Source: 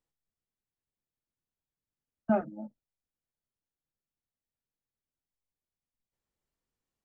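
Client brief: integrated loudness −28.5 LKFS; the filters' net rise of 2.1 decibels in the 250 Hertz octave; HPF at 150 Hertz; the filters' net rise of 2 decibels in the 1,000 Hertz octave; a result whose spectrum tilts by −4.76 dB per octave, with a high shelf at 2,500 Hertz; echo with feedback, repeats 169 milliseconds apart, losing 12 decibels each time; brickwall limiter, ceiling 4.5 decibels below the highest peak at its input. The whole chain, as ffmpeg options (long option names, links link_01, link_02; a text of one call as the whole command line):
ffmpeg -i in.wav -af "highpass=150,equalizer=frequency=250:width_type=o:gain=3.5,equalizer=frequency=1000:width_type=o:gain=3.5,highshelf=frequency=2500:gain=-7.5,alimiter=limit=-18dB:level=0:latency=1,aecho=1:1:169|338|507:0.251|0.0628|0.0157,volume=5.5dB" out.wav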